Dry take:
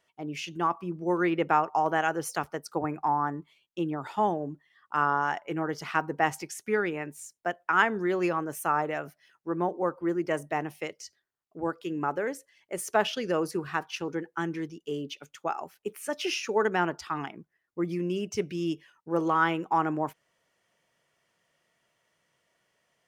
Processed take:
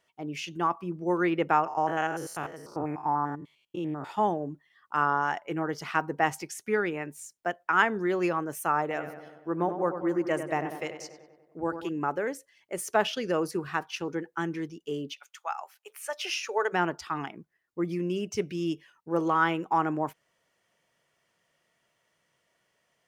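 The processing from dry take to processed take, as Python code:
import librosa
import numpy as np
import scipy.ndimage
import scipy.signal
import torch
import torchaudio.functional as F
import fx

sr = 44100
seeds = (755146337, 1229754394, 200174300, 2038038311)

y = fx.spec_steps(x, sr, hold_ms=100, at=(1.66, 4.08), fade=0.02)
y = fx.echo_filtered(y, sr, ms=96, feedback_pct=65, hz=2600.0, wet_db=-9.0, at=(8.81, 11.89))
y = fx.highpass(y, sr, hz=fx.line((15.12, 950.0), (16.72, 420.0)), slope=24, at=(15.12, 16.72), fade=0.02)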